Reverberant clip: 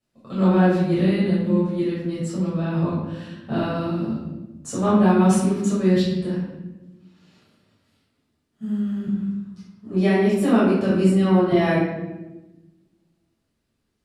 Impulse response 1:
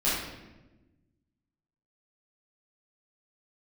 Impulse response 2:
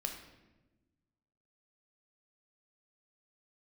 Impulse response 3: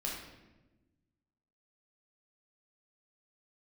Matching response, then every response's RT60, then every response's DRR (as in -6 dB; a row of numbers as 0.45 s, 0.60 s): 1; 1.1 s, 1.1 s, 1.1 s; -10.5 dB, 3.0 dB, -3.5 dB